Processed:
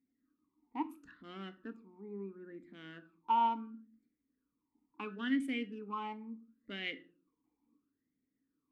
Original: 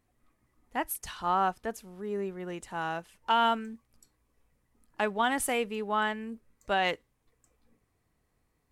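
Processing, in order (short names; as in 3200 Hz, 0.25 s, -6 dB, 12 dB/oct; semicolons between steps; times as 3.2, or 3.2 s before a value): Wiener smoothing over 15 samples; reverb RT60 0.45 s, pre-delay 4 ms, DRR 10 dB; vowel sweep i-u 0.73 Hz; gain +4 dB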